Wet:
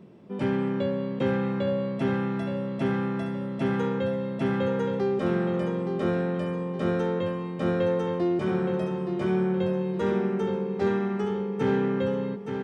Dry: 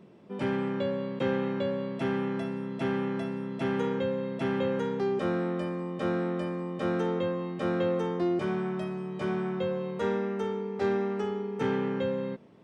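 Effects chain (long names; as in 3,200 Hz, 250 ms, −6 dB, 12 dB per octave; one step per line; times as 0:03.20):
low-shelf EQ 350 Hz +6 dB
on a send: repeating echo 870 ms, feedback 38%, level −7 dB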